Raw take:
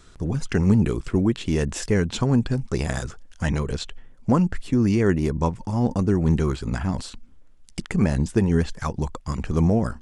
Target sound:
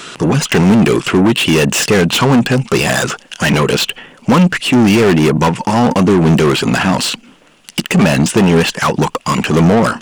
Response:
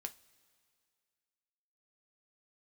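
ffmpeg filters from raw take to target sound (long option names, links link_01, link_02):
-filter_complex "[0:a]equalizer=frequency=2800:width=3.4:gain=10.5,asplit=2[link_01][link_02];[link_02]highpass=frequency=720:poles=1,volume=30dB,asoftclip=type=tanh:threshold=-6.5dB[link_03];[link_01][link_03]amix=inputs=2:normalize=0,lowpass=frequency=1400:poles=1,volume=-6dB,lowshelf=frequency=100:width_type=q:width=1.5:gain=-11,crystalizer=i=2.5:c=0,volume=3.5dB"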